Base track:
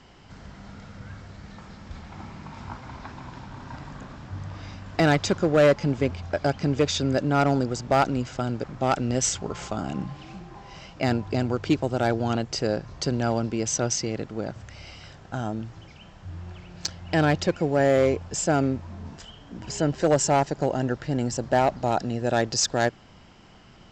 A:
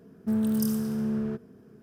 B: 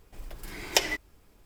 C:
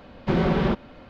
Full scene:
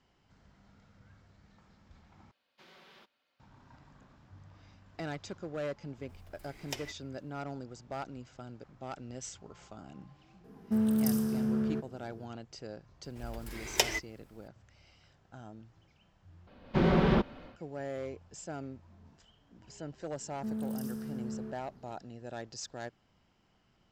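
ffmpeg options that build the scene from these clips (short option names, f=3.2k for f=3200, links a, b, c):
-filter_complex "[3:a]asplit=2[a][b];[2:a]asplit=2[c][d];[1:a]asplit=2[e][f];[0:a]volume=-19dB[g];[a]aderivative[h];[e]highpass=52[i];[d]afreqshift=20[j];[b]dynaudnorm=f=160:g=3:m=11dB[k];[f]alimiter=limit=-18.5dB:level=0:latency=1:release=71[l];[g]asplit=3[m][n][o];[m]atrim=end=2.314[p];[h]atrim=end=1.09,asetpts=PTS-STARTPTS,volume=-14.5dB[q];[n]atrim=start=3.396:end=16.474[r];[k]atrim=end=1.09,asetpts=PTS-STARTPTS,volume=-11dB[s];[o]atrim=start=17.556[t];[c]atrim=end=1.45,asetpts=PTS-STARTPTS,volume=-16dB,afade=t=in:d=0.004:c=hsin,afade=t=out:st=1.446:d=0.004:c=hsin,adelay=5960[u];[i]atrim=end=1.82,asetpts=PTS-STARTPTS,volume=-2dB,afade=t=in:d=0.004:c=hsin,afade=t=out:st=1.816:d=0.004:c=hsin,adelay=10440[v];[j]atrim=end=1.45,asetpts=PTS-STARTPTS,volume=-3.5dB,afade=t=in:d=0.004:c=hsin,afade=t=out:st=1.446:d=0.004:c=hsin,adelay=13030[w];[l]atrim=end=1.82,asetpts=PTS-STARTPTS,volume=-10.5dB,afade=t=in:d=0.004:c=hsin,afade=t=out:st=1.816:d=0.004:c=hsin,adelay=20160[x];[p][q]acrossfade=d=0.004:c1=hsin:c2=hsin[y];[y][r]acrossfade=d=0.004:c1=hsin:c2=hsin[z];[z][s]acrossfade=d=0.004:c1=hsin:c2=hsin[aa];[aa][t]acrossfade=d=0.004:c1=hsin:c2=hsin[ab];[ab][u][v][w][x]amix=inputs=5:normalize=0"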